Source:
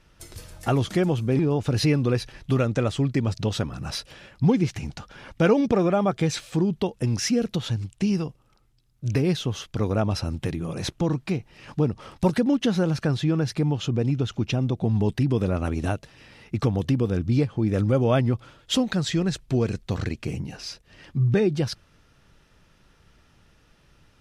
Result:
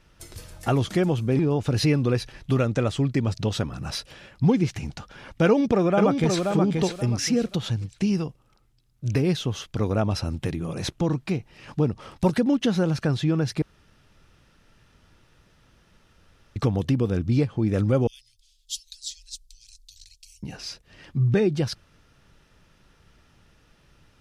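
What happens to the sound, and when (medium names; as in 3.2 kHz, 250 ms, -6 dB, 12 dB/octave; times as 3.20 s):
5.44–6.48 s: echo throw 530 ms, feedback 25%, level -4 dB
13.62–16.56 s: room tone
18.07–20.43 s: inverse Chebyshev band-stop 140–1100 Hz, stop band 70 dB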